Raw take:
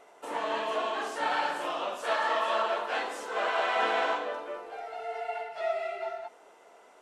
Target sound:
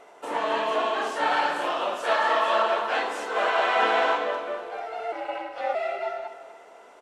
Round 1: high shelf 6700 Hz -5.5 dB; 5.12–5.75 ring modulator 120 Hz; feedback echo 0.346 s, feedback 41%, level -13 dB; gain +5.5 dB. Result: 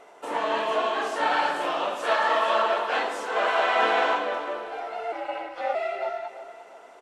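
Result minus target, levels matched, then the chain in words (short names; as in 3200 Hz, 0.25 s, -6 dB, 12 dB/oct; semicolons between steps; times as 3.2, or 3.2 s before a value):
echo 0.1 s late
high shelf 6700 Hz -5.5 dB; 5.12–5.75 ring modulator 120 Hz; feedback echo 0.246 s, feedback 41%, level -13 dB; gain +5.5 dB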